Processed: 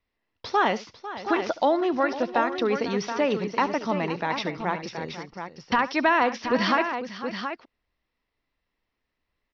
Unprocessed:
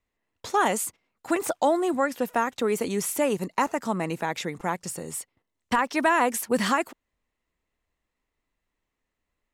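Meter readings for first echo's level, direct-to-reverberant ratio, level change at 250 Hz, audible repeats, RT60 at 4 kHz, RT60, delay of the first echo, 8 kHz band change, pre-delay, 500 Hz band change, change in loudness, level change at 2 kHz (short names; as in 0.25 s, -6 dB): -17.5 dB, none, +1.0 dB, 3, none, none, 71 ms, -14.0 dB, none, +1.0 dB, +0.5 dB, +2.0 dB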